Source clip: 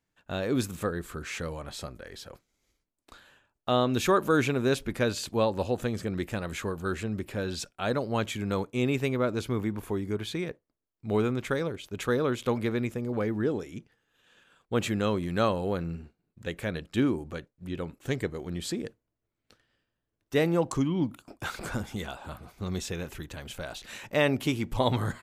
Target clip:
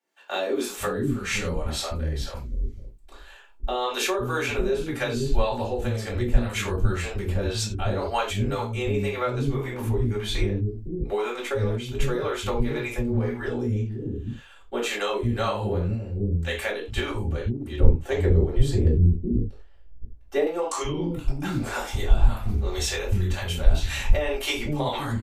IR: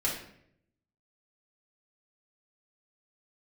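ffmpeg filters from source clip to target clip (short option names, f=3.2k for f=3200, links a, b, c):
-filter_complex "[0:a]acrossover=split=320[a][b];[a]adelay=510[c];[c][b]amix=inputs=2:normalize=0[d];[1:a]atrim=start_sample=2205,afade=t=out:st=0.2:d=0.01,atrim=end_sample=9261,asetrate=61740,aresample=44100[e];[d][e]afir=irnorm=-1:irlink=0,acompressor=threshold=-28dB:ratio=4,asubboost=boost=10.5:cutoff=51,acrossover=split=520[f][g];[f]aeval=exprs='val(0)*(1-0.7/2+0.7/2*cos(2*PI*1.9*n/s))':c=same[h];[g]aeval=exprs='val(0)*(1-0.7/2-0.7/2*cos(2*PI*1.9*n/s))':c=same[i];[h][i]amix=inputs=2:normalize=0,asettb=1/sr,asplit=3[j][k][l];[j]atrim=end=17.804[m];[k]atrim=start=17.8:end=20.47,asetpts=PTS-STARTPTS,afade=t=in:d=0.004:c=qsin,afade=t=out:st=2.666:d=0.004:c=qsin,tiltshelf=f=850:g=9.5[n];[l]atrim=start=20.466[o];[m][n]acrossfade=d=0.004:c1=hsin:c2=qsin[p];[p][o]acrossfade=d=0.004:c1=qsin:c2=hsin,volume=8.5dB"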